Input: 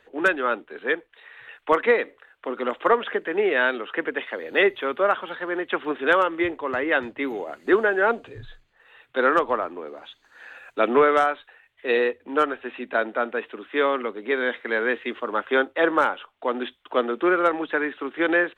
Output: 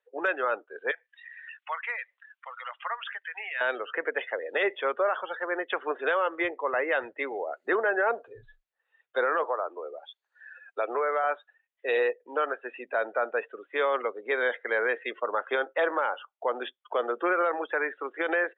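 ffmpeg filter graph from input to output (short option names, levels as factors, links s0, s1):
-filter_complex "[0:a]asettb=1/sr,asplit=3[s0][s1][s2];[s0]atrim=end=0.914[s3];[s1]atrim=start=0.91:end=3.61,asetpts=PTS-STARTPTS,afade=t=in:d=0.004:c=qsin,afade=t=out:st=2.696:d=0.004:c=qsin,highpass=f=730:w=0.5412,highpass=f=730:w=1.3066,equalizer=f=3000:t=o:w=2.4:g=10,acompressor=threshold=0.01:ratio=2:attack=3.2:release=140:knee=1:detection=peak[s4];[s2]atrim=start=3.606[s5];[s3][s4]acrossfade=d=0.004:c1=hsin:c2=qsin[s6];[s6][s5]acrossfade=d=0.004:c1=qsin:c2=hsin,asettb=1/sr,asplit=3[s7][s8][s9];[s7]atrim=end=9.434[s10];[s8]atrim=start=9.43:end=11.24,asetpts=PTS-STARTPTS,afade=t=in:d=0.004:c=qsin,afade=t=out:st=1.806:d=0.004:c=qsin,highpass=f=290:w=0.5412,highpass=f=290:w=1.3066,acompressor=threshold=0.0562:ratio=3:attack=3.2:release=140:knee=1:detection=peak[s11];[s9]atrim=start=11.236[s12];[s10][s11]acrossfade=d=0.004:c1=hsin:c2=qsin[s13];[s13][s12]acrossfade=d=0.004:c1=qsin:c2=hsin,afftdn=nr=24:nf=-36,lowshelf=f=360:t=q:w=1.5:g=-13,alimiter=limit=0.168:level=0:latency=1:release=35,volume=0.841"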